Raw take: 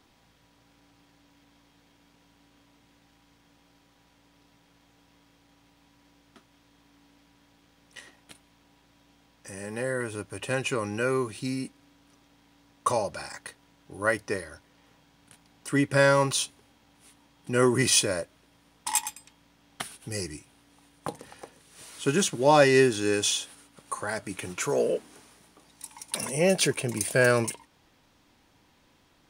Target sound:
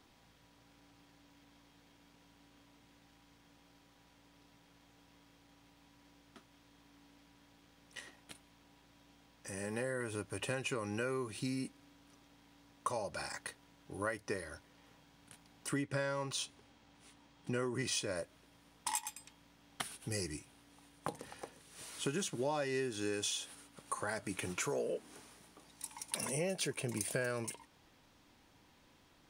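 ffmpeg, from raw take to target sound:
-filter_complex "[0:a]asettb=1/sr,asplit=3[a][b][c];[a]atrim=end=15.824[d];[b]atrim=start=15.82:end=18.16,asetpts=PTS-STARTPTS,afade=t=in:d=0.004:c=qsin,afade=t=out:st=2.336:d=0.004:c=qsin,equalizer=f=12k:w=1.6:g=-13.5[e];[c]atrim=start=18.156[f];[d][e]acrossfade=d=0.004:c1=hsin:c2=qsin[g];[g][f]acrossfade=d=0.004:c1=qsin:c2=hsin,acompressor=threshold=-31dB:ratio=6,volume=-3dB"

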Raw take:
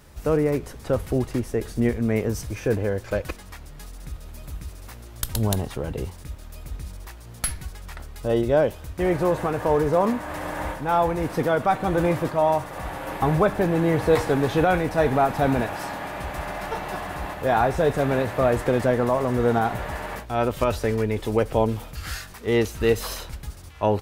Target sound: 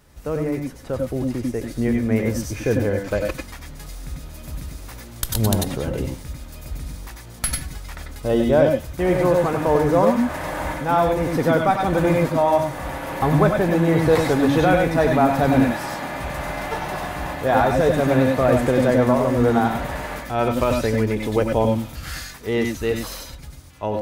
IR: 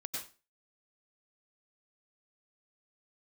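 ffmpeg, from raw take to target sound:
-filter_complex "[0:a]dynaudnorm=f=370:g=11:m=9dB[a];[1:a]atrim=start_sample=2205,afade=t=out:st=0.15:d=0.01,atrim=end_sample=7056[b];[a][b]afir=irnorm=-1:irlink=0"

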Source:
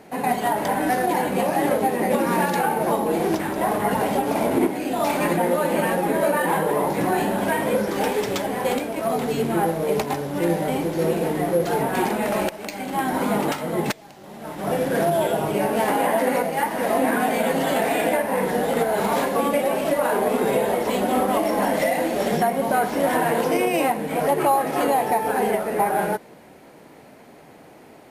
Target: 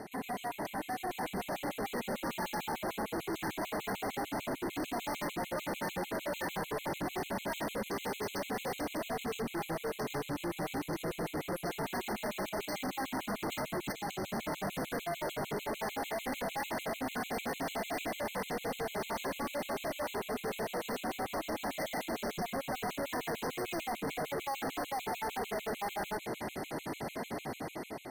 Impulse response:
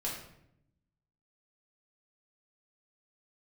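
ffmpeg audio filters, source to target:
-af "bandreject=f=510:w=12,areverse,acompressor=threshold=-30dB:ratio=8,areverse,alimiter=level_in=5dB:limit=-24dB:level=0:latency=1:release=72,volume=-5dB,dynaudnorm=f=910:g=3:m=8.5dB,asoftclip=type=hard:threshold=-37.5dB,afftfilt=real='re*gt(sin(2*PI*6.7*pts/sr)*(1-2*mod(floor(b*sr/1024/2100),2)),0)':imag='im*gt(sin(2*PI*6.7*pts/sr)*(1-2*mod(floor(b*sr/1024/2100),2)),0)':win_size=1024:overlap=0.75,volume=4.5dB"

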